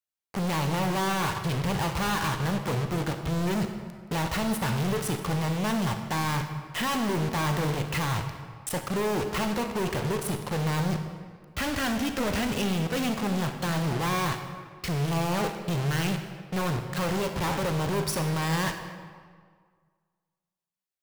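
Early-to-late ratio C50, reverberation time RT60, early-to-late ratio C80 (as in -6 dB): 7.0 dB, 1.8 s, 8.5 dB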